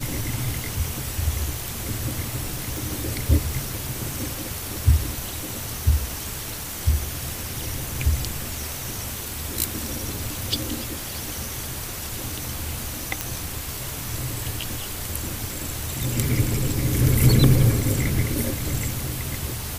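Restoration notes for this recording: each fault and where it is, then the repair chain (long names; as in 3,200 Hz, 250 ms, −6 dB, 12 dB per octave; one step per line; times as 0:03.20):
0:02.77: click
0:13.21: click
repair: click removal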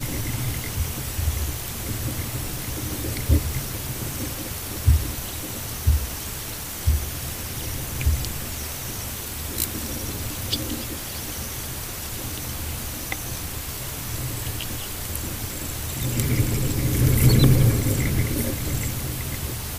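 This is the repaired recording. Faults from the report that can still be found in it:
none of them is left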